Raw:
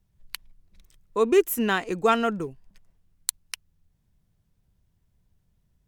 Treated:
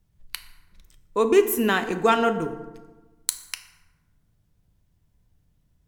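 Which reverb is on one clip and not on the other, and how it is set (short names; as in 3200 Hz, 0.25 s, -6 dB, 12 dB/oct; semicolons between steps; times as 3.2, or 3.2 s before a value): FDN reverb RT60 1.2 s, low-frequency decay 1.2×, high-frequency decay 0.55×, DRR 8 dB; gain +2 dB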